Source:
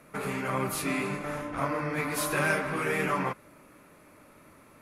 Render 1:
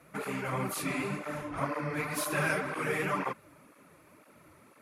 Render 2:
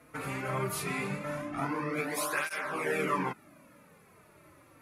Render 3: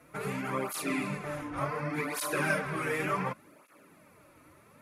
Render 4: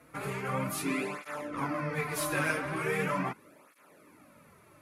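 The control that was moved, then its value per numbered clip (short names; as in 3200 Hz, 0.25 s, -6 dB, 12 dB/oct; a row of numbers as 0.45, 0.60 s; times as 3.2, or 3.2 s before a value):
tape flanging out of phase, nulls at: 2, 0.2, 0.68, 0.4 Hz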